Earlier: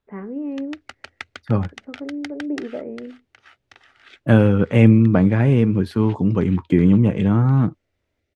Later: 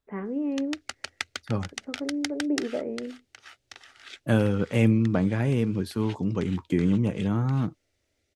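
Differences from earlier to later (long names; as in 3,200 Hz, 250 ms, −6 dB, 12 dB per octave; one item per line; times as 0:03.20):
second voice −7.5 dB
master: add bass and treble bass −2 dB, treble +13 dB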